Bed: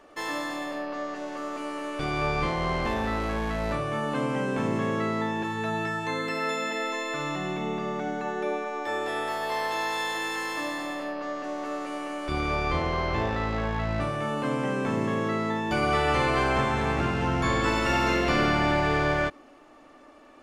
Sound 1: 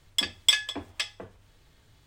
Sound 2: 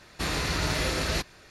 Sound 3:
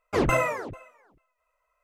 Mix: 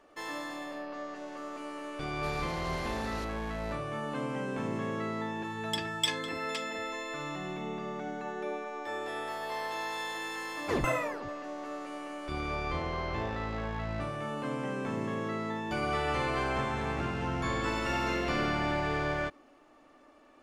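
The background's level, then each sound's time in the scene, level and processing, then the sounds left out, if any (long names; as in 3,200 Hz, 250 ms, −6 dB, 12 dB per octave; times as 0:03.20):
bed −7 dB
0:02.03: mix in 2 −16.5 dB
0:05.55: mix in 1 −9 dB
0:10.55: mix in 3 −7 dB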